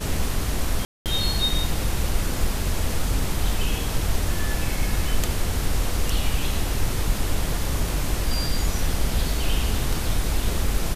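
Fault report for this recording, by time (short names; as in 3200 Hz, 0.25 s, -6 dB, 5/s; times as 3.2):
0.85–1.06 gap 0.208 s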